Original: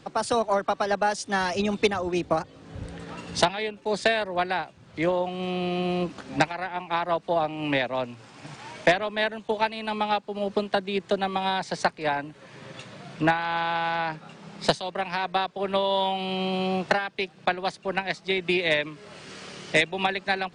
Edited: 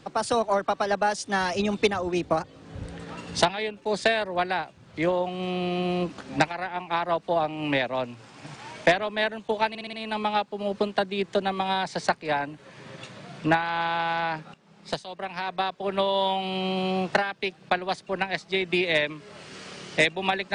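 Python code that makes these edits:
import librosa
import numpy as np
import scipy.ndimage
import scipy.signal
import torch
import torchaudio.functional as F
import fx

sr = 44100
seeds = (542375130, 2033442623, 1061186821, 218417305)

y = fx.edit(x, sr, fx.stutter(start_s=9.69, slice_s=0.06, count=5),
    fx.fade_in_from(start_s=14.3, length_s=1.37, floor_db=-16.5), tone=tone)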